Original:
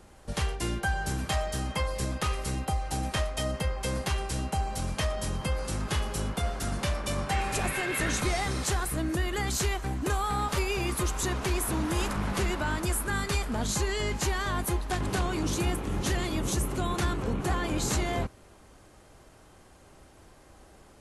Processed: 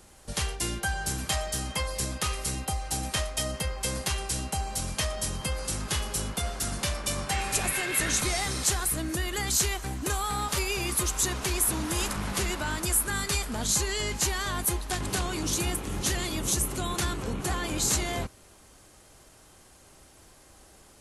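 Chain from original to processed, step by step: treble shelf 3.2 kHz +11.5 dB; trim -2.5 dB

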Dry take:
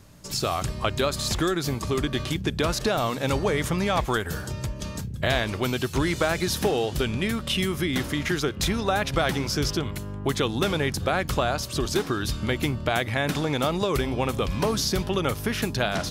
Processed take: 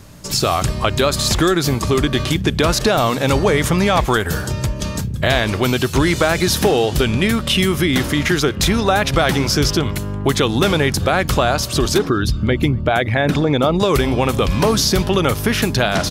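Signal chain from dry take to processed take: 11.98–13.80 s: resonances exaggerated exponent 1.5; in parallel at -2 dB: peak limiter -17.5 dBFS, peak gain reduction 9 dB; on the sum: speakerphone echo 240 ms, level -29 dB; trim +5 dB

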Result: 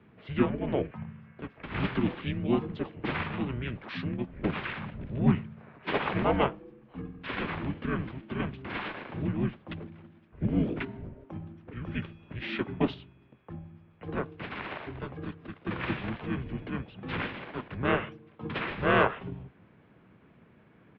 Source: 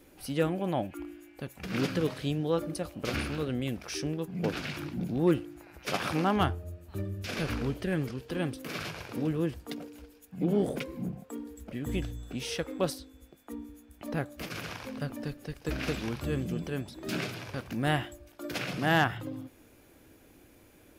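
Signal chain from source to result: harmony voices -5 st -1 dB, -4 st -5 dB; mistuned SSB -130 Hz 250–3400 Hz; tape noise reduction on one side only decoder only

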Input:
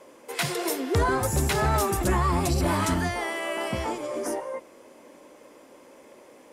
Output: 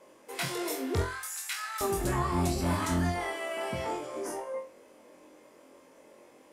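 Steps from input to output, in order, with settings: 1.02–1.81 s: high-pass 1.4 kHz 24 dB/octave; on a send: flutter echo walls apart 3.9 m, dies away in 0.33 s; on the sum: trim -7.5 dB

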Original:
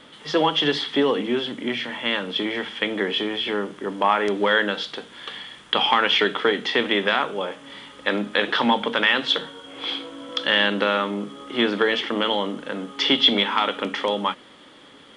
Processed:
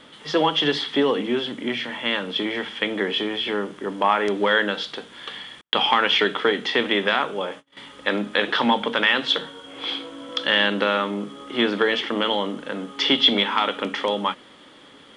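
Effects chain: 5.61–7.77 s: gate -37 dBFS, range -46 dB

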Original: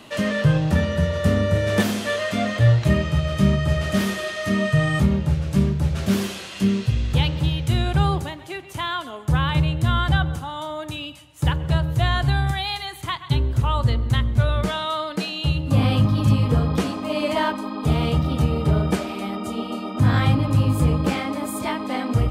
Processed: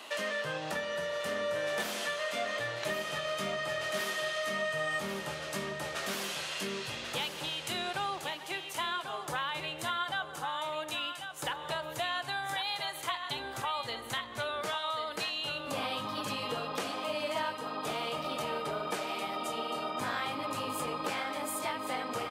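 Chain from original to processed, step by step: high-pass 590 Hz 12 dB/octave; compression 3:1, threshold -34 dBFS, peak gain reduction 11 dB; feedback delay 1092 ms, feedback 28%, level -8 dB

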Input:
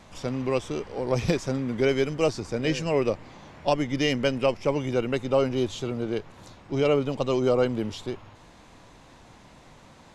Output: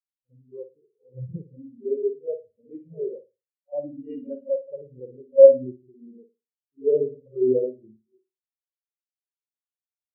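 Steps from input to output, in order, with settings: spring tank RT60 1 s, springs 55 ms, chirp 30 ms, DRR -9.5 dB; spectral contrast expander 4:1; trim -1.5 dB

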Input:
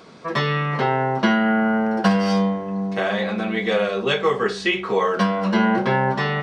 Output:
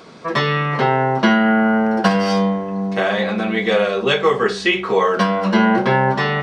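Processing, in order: hum notches 50/100/150/200 Hz; trim +4 dB

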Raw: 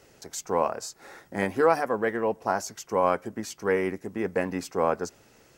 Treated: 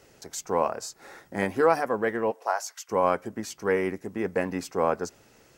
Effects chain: 2.30–2.88 s: high-pass 330 Hz -> 1.2 kHz 24 dB/octave

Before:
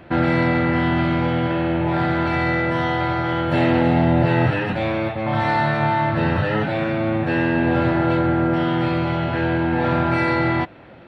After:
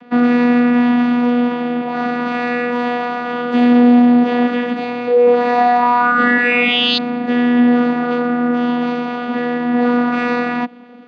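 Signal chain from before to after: painted sound rise, 5.06–6.98 s, 370–3700 Hz -17 dBFS; vocoder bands 16, saw 243 Hz; treble shelf 3.4 kHz +9 dB; trim +4.5 dB

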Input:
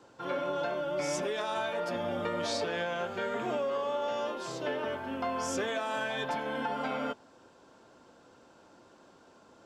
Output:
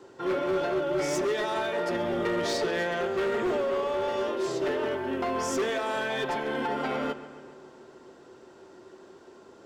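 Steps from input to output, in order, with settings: small resonant body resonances 380/1900 Hz, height 16 dB, ringing for 90 ms; hard clipper -27 dBFS, distortion -12 dB; on a send: filtered feedback delay 137 ms, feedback 67%, low-pass 4.8 kHz, level -14.5 dB; on the sum: trim +3 dB

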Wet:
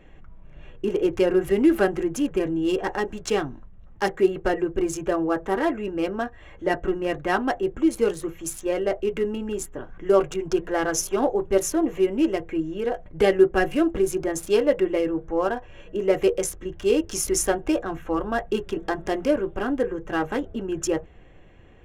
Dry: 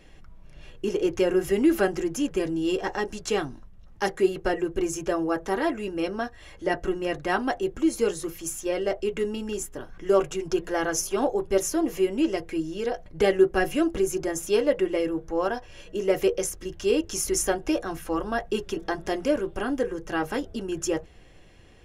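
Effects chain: local Wiener filter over 9 samples; trim +2.5 dB

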